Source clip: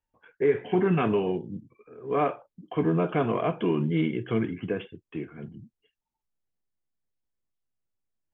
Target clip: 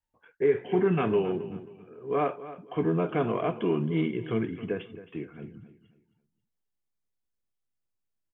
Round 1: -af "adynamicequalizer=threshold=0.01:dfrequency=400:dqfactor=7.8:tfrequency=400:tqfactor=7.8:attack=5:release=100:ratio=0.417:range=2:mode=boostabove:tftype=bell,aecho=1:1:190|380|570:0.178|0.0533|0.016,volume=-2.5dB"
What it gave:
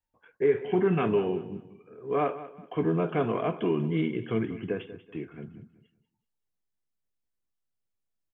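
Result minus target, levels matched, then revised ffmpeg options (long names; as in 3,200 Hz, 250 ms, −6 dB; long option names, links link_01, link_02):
echo 79 ms early
-af "adynamicequalizer=threshold=0.01:dfrequency=400:dqfactor=7.8:tfrequency=400:tqfactor=7.8:attack=5:release=100:ratio=0.417:range=2:mode=boostabove:tftype=bell,aecho=1:1:269|538|807:0.178|0.0533|0.016,volume=-2.5dB"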